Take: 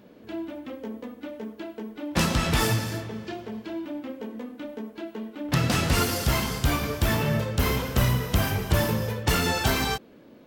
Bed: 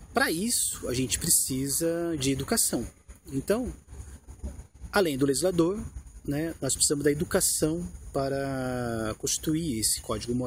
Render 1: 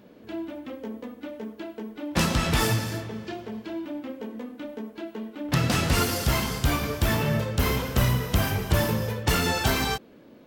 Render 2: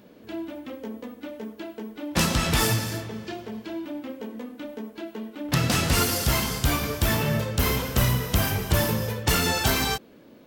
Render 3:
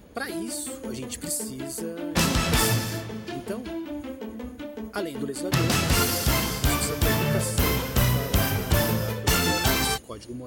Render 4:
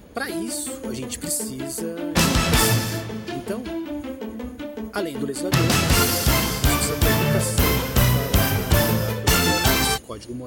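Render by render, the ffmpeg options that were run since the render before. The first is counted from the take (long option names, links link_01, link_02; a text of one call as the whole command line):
ffmpeg -i in.wav -af anull out.wav
ffmpeg -i in.wav -af "highshelf=frequency=4300:gain=5.5" out.wav
ffmpeg -i in.wav -i bed.wav -filter_complex "[1:a]volume=-7.5dB[link_01];[0:a][link_01]amix=inputs=2:normalize=0" out.wav
ffmpeg -i in.wav -af "volume=4dB" out.wav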